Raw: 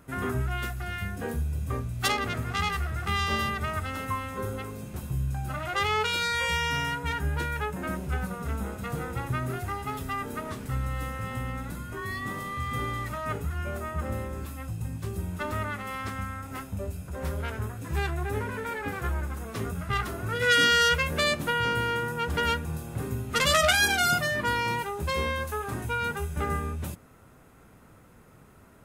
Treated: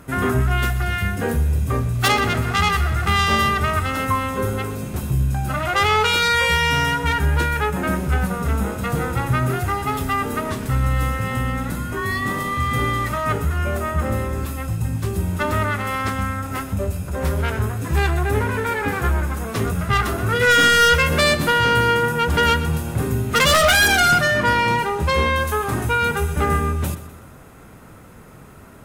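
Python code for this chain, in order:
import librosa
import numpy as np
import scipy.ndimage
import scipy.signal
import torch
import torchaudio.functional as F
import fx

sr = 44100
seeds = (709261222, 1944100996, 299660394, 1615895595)

p1 = fx.high_shelf(x, sr, hz=8500.0, db=-9.5, at=(24.0, 25.36))
p2 = fx.fold_sine(p1, sr, drive_db=12, ceiling_db=-7.0)
p3 = p1 + (p2 * librosa.db_to_amplitude(-12.0))
p4 = fx.echo_feedback(p3, sr, ms=125, feedback_pct=49, wet_db=-14.5)
y = p4 * librosa.db_to_amplitude(2.5)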